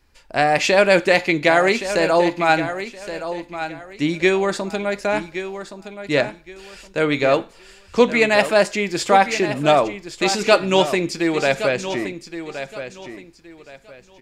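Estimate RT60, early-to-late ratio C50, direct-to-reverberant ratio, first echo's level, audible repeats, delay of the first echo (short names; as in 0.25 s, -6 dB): none, none, none, -11.0 dB, 2, 1.12 s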